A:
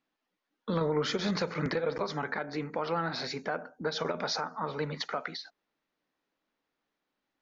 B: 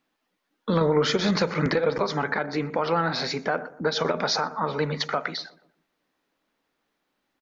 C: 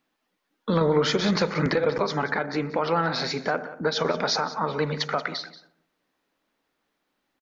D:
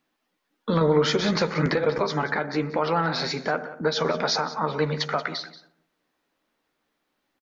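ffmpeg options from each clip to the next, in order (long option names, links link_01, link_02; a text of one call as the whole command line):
ffmpeg -i in.wav -filter_complex "[0:a]asplit=2[link_01][link_02];[link_02]adelay=121,lowpass=frequency=1200:poles=1,volume=-16dB,asplit=2[link_03][link_04];[link_04]adelay=121,lowpass=frequency=1200:poles=1,volume=0.48,asplit=2[link_05][link_06];[link_06]adelay=121,lowpass=frequency=1200:poles=1,volume=0.48,asplit=2[link_07][link_08];[link_08]adelay=121,lowpass=frequency=1200:poles=1,volume=0.48[link_09];[link_01][link_03][link_05][link_07][link_09]amix=inputs=5:normalize=0,volume=7.5dB" out.wav
ffmpeg -i in.wav -af "aecho=1:1:182:0.158" out.wav
ffmpeg -i in.wav -filter_complex "[0:a]asplit=2[link_01][link_02];[link_02]adelay=13,volume=-11dB[link_03];[link_01][link_03]amix=inputs=2:normalize=0" out.wav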